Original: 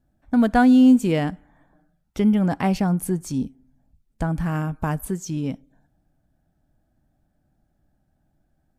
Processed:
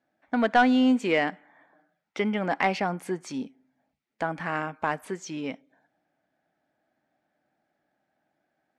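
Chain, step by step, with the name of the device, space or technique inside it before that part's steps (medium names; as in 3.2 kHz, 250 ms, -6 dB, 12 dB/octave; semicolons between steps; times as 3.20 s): intercom (band-pass 430–4400 Hz; peaking EQ 2.1 kHz +7.5 dB 0.53 oct; saturation -12 dBFS, distortion -18 dB); trim +2 dB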